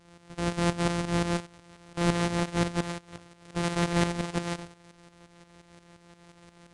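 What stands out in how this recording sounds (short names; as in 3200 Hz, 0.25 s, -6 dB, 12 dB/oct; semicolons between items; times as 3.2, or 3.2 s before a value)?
a buzz of ramps at a fixed pitch in blocks of 256 samples; tremolo saw up 5.7 Hz, depth 70%; AAC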